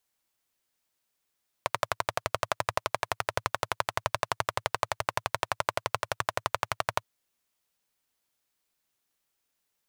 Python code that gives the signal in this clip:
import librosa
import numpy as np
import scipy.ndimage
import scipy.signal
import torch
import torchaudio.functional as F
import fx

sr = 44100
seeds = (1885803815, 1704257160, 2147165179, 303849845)

y = fx.engine_single(sr, seeds[0], length_s=5.37, rpm=1400, resonances_hz=(110.0, 640.0, 980.0))